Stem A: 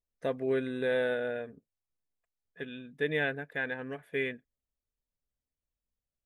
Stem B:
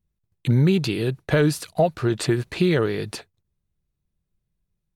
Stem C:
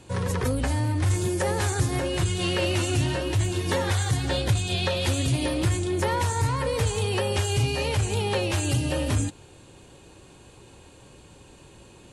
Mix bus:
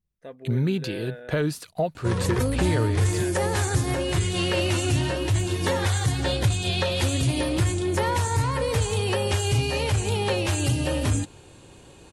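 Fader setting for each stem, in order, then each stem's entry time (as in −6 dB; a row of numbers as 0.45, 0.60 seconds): −9.0, −6.0, +1.0 decibels; 0.00, 0.00, 1.95 seconds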